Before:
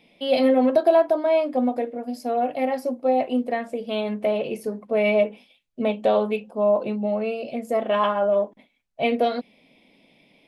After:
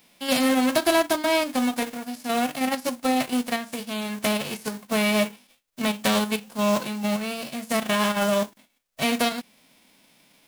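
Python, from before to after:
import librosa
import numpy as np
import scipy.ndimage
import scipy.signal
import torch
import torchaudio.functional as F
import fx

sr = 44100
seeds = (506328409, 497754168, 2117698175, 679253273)

p1 = fx.envelope_flatten(x, sr, power=0.3)
p2 = fx.level_steps(p1, sr, step_db=12)
p3 = p1 + (p2 * 10.0 ** (1.5 / 20.0))
y = p3 * 10.0 ** (-6.5 / 20.0)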